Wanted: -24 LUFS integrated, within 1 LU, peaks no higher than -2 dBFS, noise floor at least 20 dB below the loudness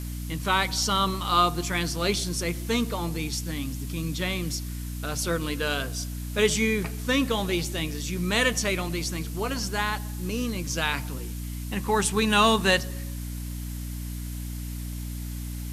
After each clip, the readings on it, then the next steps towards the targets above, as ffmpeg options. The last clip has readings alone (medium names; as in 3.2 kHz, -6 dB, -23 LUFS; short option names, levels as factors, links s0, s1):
hum 60 Hz; highest harmonic 300 Hz; hum level -31 dBFS; noise floor -34 dBFS; noise floor target -47 dBFS; loudness -27.0 LUFS; peak level -7.5 dBFS; loudness target -24.0 LUFS
-> -af "bandreject=f=60:t=h:w=4,bandreject=f=120:t=h:w=4,bandreject=f=180:t=h:w=4,bandreject=f=240:t=h:w=4,bandreject=f=300:t=h:w=4"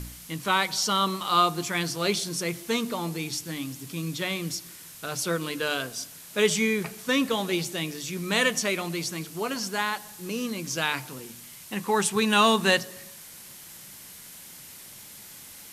hum not found; noise floor -46 dBFS; noise floor target -47 dBFS
-> -af "afftdn=nr=6:nf=-46"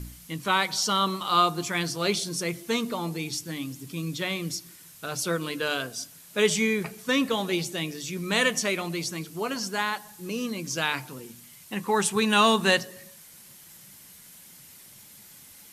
noise floor -50 dBFS; loudness -26.5 LUFS; peak level -8.0 dBFS; loudness target -24.0 LUFS
-> -af "volume=1.33"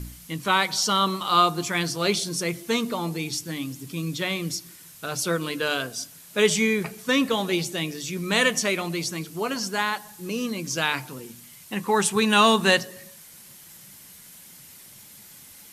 loudness -24.5 LUFS; peak level -6.0 dBFS; noise floor -48 dBFS